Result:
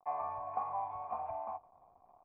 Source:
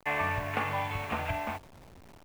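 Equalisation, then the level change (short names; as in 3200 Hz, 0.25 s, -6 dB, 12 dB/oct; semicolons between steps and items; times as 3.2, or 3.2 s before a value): vocal tract filter a; notch 2600 Hz, Q 11; +4.0 dB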